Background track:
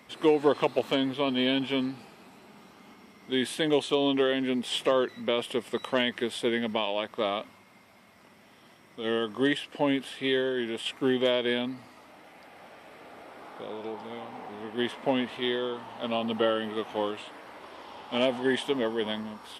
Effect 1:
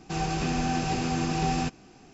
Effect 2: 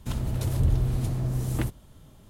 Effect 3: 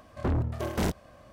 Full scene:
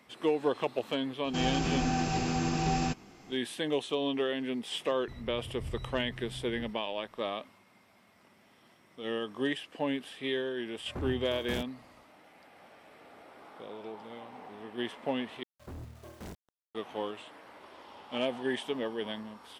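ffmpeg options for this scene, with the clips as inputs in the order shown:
-filter_complex "[3:a]asplit=2[a][b];[0:a]volume=-6dB[c];[2:a]lowpass=1.3k[d];[a]equalizer=f=13k:w=1.5:g=3[e];[b]acrusher=bits=6:mix=0:aa=0.000001[f];[c]asplit=2[g][h];[g]atrim=end=15.434[i];[f]atrim=end=1.32,asetpts=PTS-STARTPTS,volume=-17dB[j];[h]atrim=start=16.746[k];[1:a]atrim=end=2.13,asetpts=PTS-STARTPTS,volume=-2.5dB,afade=t=in:d=0.004:c=hsin,afade=t=out:st=2.126:d=0.004:c=hsin,adelay=1240[l];[d]atrim=end=2.29,asetpts=PTS-STARTPTS,volume=-17.5dB,afade=t=in:d=0.004:c=hsin,afade=t=out:st=2.286:d=0.004:c=hsin,adelay=220941S[m];[e]atrim=end=1.32,asetpts=PTS-STARTPTS,volume=-10.5dB,afade=t=in:d=0.004:c=hsin,afade=t=out:st=1.316:d=0.004:c=hsin,adelay=10710[n];[i][j]acrossfade=d=0.004:c1=hsin:c2=hsin[o];[o][k]acrossfade=d=0.004:c1=hsin:c2=hsin[p];[p][l][m][n]amix=inputs=4:normalize=0"

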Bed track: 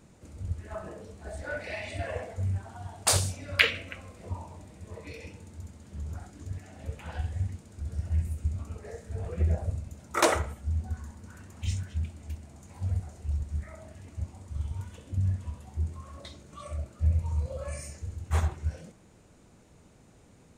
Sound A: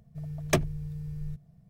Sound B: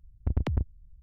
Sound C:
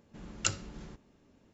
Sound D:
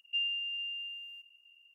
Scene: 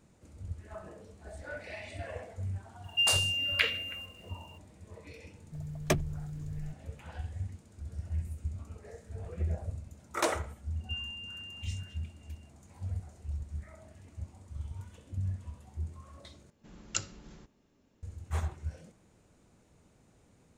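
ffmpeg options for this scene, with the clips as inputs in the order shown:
-filter_complex "[4:a]asplit=2[a][b];[0:a]volume=-6.5dB[c];[a]crystalizer=i=8:c=0[d];[3:a]highshelf=f=4.8k:g=5[e];[c]asplit=2[f][g];[f]atrim=end=16.504[h];[e]atrim=end=1.53,asetpts=PTS-STARTPTS,volume=-5.5dB[i];[g]atrim=start=18.026[j];[d]atrim=end=1.74,asetpts=PTS-STARTPTS,volume=-5.5dB,afade=t=in:d=0.004:c=hsin,afade=t=out:st=1.736:d=0.004:c=hsin,adelay=2840[k];[1:a]atrim=end=1.69,asetpts=PTS-STARTPTS,volume=-3.5dB,afade=t=in:d=0.004:c=hsin,afade=t=out:st=1.686:d=0.004:c=hsin,adelay=236817S[l];[b]atrim=end=1.74,asetpts=PTS-STARTPTS,volume=-7dB,afade=t=in:d=0.004:c=hsin,afade=t=out:st=1.736:d=0.004:c=hsin,adelay=10760[m];[h][i]acrossfade=d=0.004:c1=hsin:c2=hsin[n];[n][j]acrossfade=d=0.004:c1=hsin:c2=hsin[o];[o][k][l][m]amix=inputs=4:normalize=0"

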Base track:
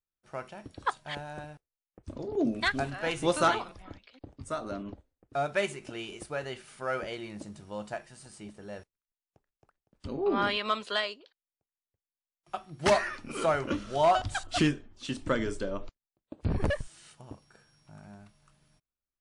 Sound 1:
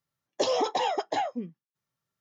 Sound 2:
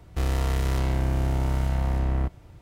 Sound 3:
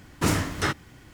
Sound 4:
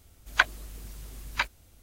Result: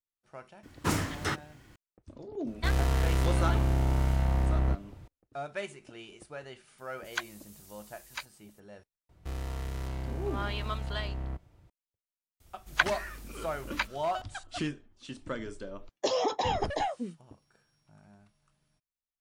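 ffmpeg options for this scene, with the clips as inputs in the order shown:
-filter_complex "[2:a]asplit=2[a][b];[4:a]asplit=2[c][d];[0:a]volume=-8dB[e];[c]bass=f=250:g=-11,treble=f=4k:g=11[f];[3:a]atrim=end=1.13,asetpts=PTS-STARTPTS,volume=-6dB,afade=t=in:d=0.004:c=hsin,afade=t=out:st=1.126:d=0.004:c=hsin,adelay=630[g];[a]atrim=end=2.61,asetpts=PTS-STARTPTS,volume=-2dB,afade=t=in:d=0.004:c=hsin,afade=t=out:st=2.606:d=0.004:c=hsin,adelay=2470[h];[f]atrim=end=1.82,asetpts=PTS-STARTPTS,volume=-13dB,afade=t=in:d=0.004:c=hsin,afade=t=out:st=1.816:d=0.004:c=hsin,adelay=6780[i];[b]atrim=end=2.61,asetpts=PTS-STARTPTS,volume=-11.5dB,afade=t=in:d=0.004:c=hsin,afade=t=out:st=2.606:d=0.004:c=hsin,adelay=9090[j];[d]atrim=end=1.82,asetpts=PTS-STARTPTS,volume=-3.5dB,afade=t=in:d=0.004:c=hsin,afade=t=out:st=1.816:d=0.004:c=hsin,adelay=12400[k];[1:a]atrim=end=2.2,asetpts=PTS-STARTPTS,volume=-2.5dB,afade=t=in:d=0.004:c=hsin,afade=t=out:st=2.196:d=0.004:c=hsin,adelay=15640[l];[e][g][h][i][j][k][l]amix=inputs=7:normalize=0"

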